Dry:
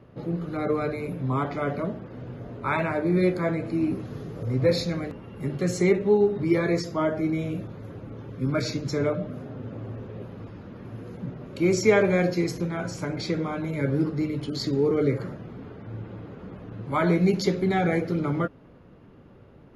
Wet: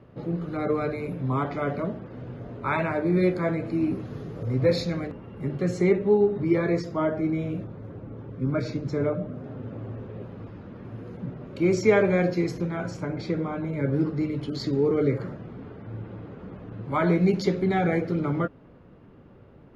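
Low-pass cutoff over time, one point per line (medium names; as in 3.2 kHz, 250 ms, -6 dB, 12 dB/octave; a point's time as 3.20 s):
low-pass 6 dB/octave
5 kHz
from 5.07 s 2.2 kHz
from 7.64 s 1.3 kHz
from 9.44 s 3.1 kHz
from 12.97 s 1.6 kHz
from 13.93 s 3.5 kHz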